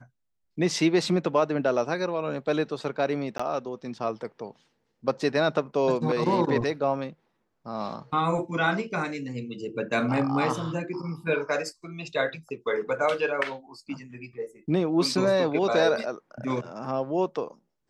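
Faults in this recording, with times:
0:03.38–0:03.40: drop-out 15 ms

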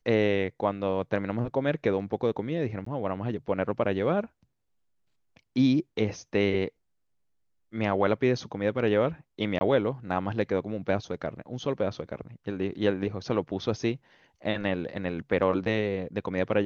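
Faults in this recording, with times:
0:02.85–0:02.86: drop-out 14 ms
0:09.59–0:09.61: drop-out 20 ms

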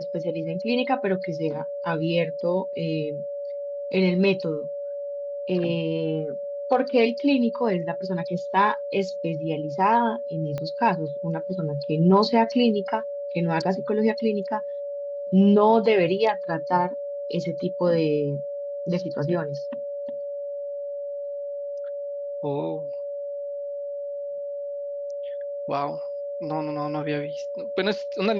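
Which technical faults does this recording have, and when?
whistle 570 Hz −29 dBFS
0:10.58: click −19 dBFS

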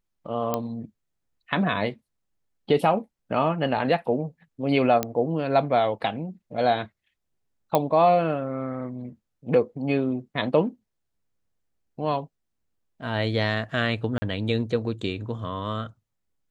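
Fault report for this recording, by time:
0:00.54: click −11 dBFS
0:05.03: click −9 dBFS
0:07.75: click −8 dBFS
0:14.18–0:14.22: drop-out 40 ms

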